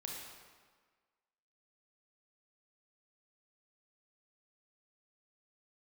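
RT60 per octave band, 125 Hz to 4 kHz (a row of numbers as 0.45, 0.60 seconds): 1.3, 1.5, 1.5, 1.6, 1.4, 1.2 seconds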